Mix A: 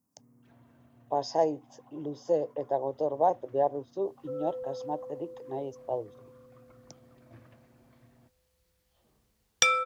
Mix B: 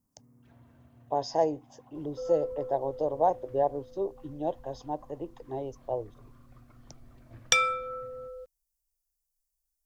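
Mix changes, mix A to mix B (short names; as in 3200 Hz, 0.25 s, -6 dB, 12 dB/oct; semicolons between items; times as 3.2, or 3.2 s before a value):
second sound: entry -2.10 s; master: remove HPF 130 Hz 12 dB/oct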